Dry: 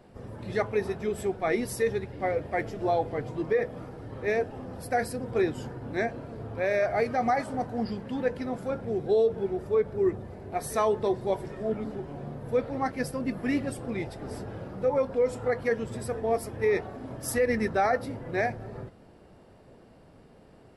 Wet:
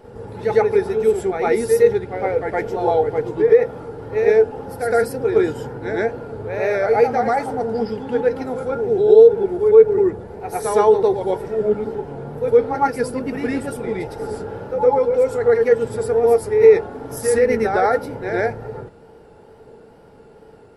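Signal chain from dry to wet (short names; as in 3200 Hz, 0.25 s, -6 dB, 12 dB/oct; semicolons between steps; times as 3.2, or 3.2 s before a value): high shelf 9400 Hz +4 dB; reverse echo 0.111 s -5.5 dB; wow and flutter 70 cents; small resonant body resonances 450/850/1400 Hz, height 13 dB, ringing for 50 ms; gain +3 dB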